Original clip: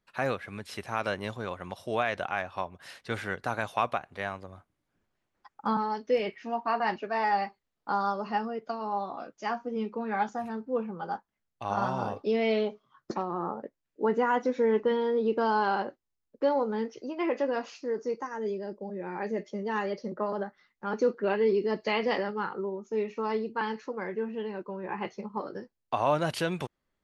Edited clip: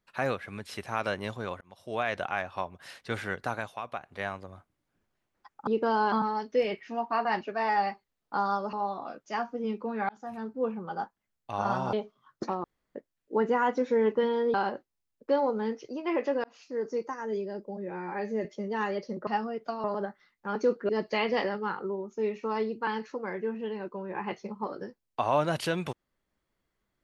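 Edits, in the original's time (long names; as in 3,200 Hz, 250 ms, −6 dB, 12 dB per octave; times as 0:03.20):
0:01.61–0:02.12: fade in
0:03.45–0:04.20: duck −11 dB, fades 0.36 s
0:08.28–0:08.85: move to 0:20.22
0:10.21–0:10.72: fade in equal-power
0:12.05–0:12.61: remove
0:13.32–0:13.63: fill with room tone
0:15.22–0:15.67: move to 0:05.67
0:17.57–0:17.95: fade in
0:19.04–0:19.40: time-stretch 1.5×
0:21.27–0:21.63: remove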